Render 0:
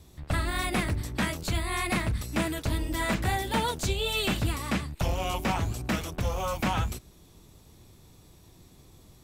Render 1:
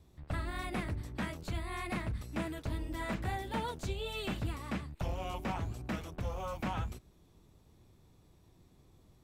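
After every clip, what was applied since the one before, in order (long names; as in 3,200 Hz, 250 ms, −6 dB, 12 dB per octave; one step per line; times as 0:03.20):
high-shelf EQ 3,100 Hz −9 dB
level −8 dB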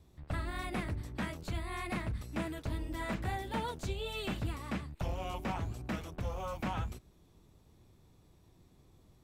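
no processing that can be heard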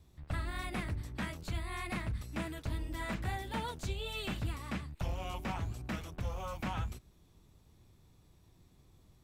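parametric band 440 Hz −4.5 dB 2.6 octaves
level +1 dB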